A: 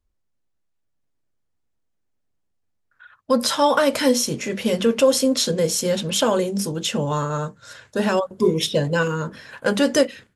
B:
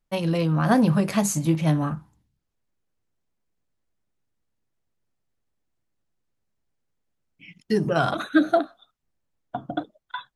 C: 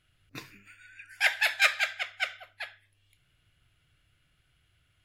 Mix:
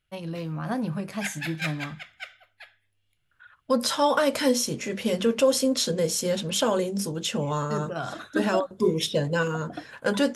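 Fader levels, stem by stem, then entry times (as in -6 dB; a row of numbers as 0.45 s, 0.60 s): -4.5 dB, -10.0 dB, -8.5 dB; 0.40 s, 0.00 s, 0.00 s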